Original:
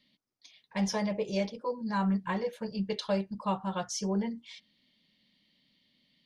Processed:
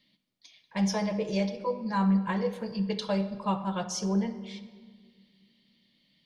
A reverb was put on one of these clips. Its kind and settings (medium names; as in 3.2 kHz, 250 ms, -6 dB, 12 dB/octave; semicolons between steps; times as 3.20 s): simulated room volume 2200 m³, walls mixed, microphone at 0.7 m; trim +1 dB